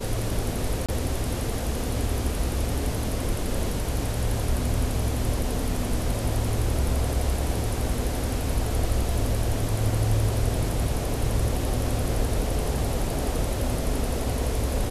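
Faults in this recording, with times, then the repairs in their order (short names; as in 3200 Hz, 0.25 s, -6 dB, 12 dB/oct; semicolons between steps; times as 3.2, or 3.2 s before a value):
0.86–0.89 gap 26 ms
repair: interpolate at 0.86, 26 ms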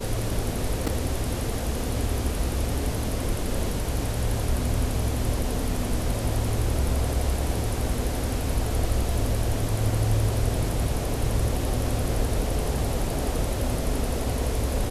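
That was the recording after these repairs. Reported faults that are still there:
none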